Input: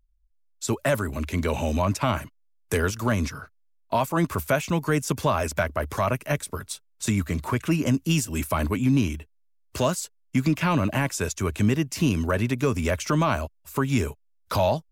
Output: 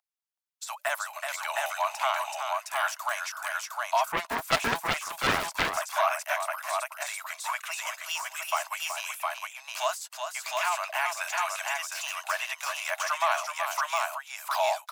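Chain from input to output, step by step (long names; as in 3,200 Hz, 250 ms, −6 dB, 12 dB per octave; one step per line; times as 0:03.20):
Butterworth high-pass 650 Hz 96 dB per octave
on a send: multi-tap delay 375/711 ms −7/−3 dB
on the sum: de-essing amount 65%
0:04.12–0:05.77: highs frequency-modulated by the lows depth 0.97 ms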